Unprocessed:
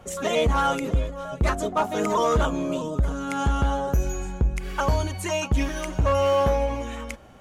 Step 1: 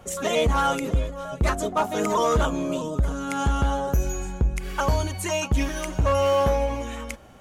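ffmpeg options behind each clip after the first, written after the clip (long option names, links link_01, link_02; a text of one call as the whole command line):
ffmpeg -i in.wav -af "highshelf=frequency=6300:gain=5" out.wav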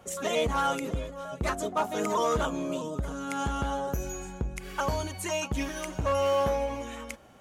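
ffmpeg -i in.wav -af "lowshelf=frequency=73:gain=-11.5,volume=-4.5dB" out.wav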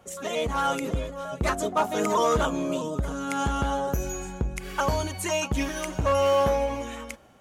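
ffmpeg -i in.wav -af "dynaudnorm=framelen=180:gausssize=7:maxgain=6dB,volume=-2dB" out.wav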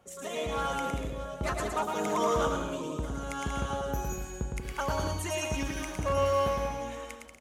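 ffmpeg -i in.wav -af "aecho=1:1:110|187|240.9|278.6|305:0.631|0.398|0.251|0.158|0.1,volume=-7dB" out.wav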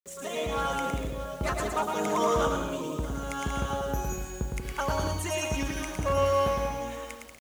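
ffmpeg -i in.wav -af "acrusher=bits=8:mix=0:aa=0.000001,volume=2dB" out.wav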